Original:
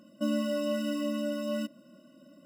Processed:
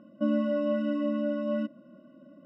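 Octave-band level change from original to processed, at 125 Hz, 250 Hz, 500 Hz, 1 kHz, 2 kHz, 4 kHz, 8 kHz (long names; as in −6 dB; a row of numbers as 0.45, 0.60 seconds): can't be measured, +3.0 dB, +3.0 dB, +2.0 dB, −0.5 dB, −9.0 dB, below −25 dB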